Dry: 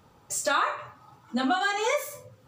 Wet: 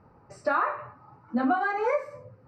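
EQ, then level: boxcar filter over 13 samples; distance through air 87 m; +2.0 dB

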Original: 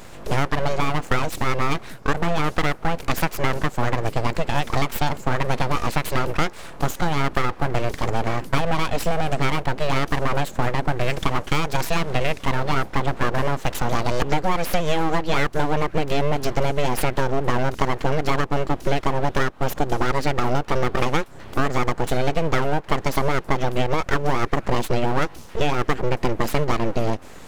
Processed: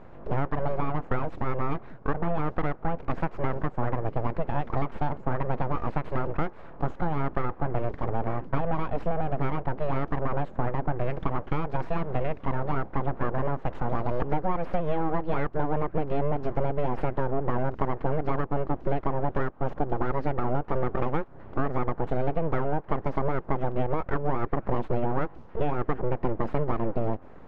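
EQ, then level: low-pass 1.2 kHz 12 dB/octave; -5.0 dB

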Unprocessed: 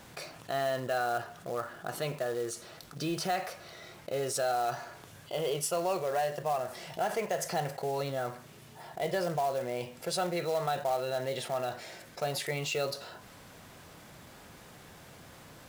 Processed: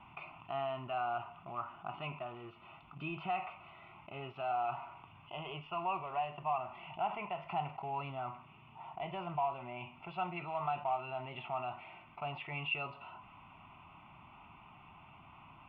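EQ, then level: rippled Chebyshev low-pass 3.7 kHz, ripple 9 dB; band-stop 500 Hz, Q 12; static phaser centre 2.5 kHz, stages 8; +3.5 dB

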